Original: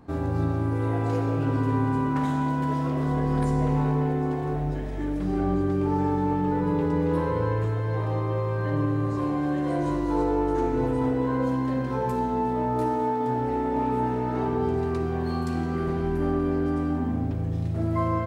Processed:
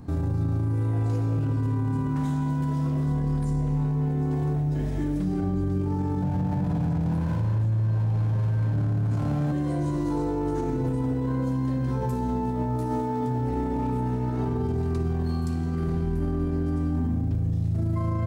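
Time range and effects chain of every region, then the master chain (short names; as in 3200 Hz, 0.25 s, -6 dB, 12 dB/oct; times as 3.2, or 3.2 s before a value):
6.22–9.52 minimum comb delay 1.2 ms + HPF 120 Hz + low shelf 290 Hz +10.5 dB
whole clip: tone controls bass +13 dB, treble +9 dB; notches 50/100 Hz; limiter -19.5 dBFS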